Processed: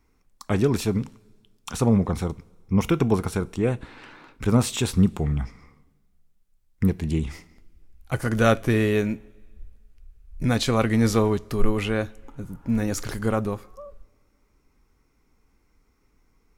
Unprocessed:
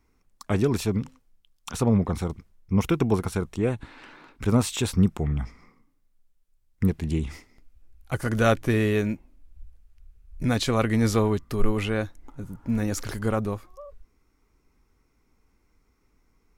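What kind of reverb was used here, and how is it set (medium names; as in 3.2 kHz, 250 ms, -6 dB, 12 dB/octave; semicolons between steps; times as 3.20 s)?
two-slope reverb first 0.28 s, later 1.7 s, from -18 dB, DRR 16 dB; trim +1.5 dB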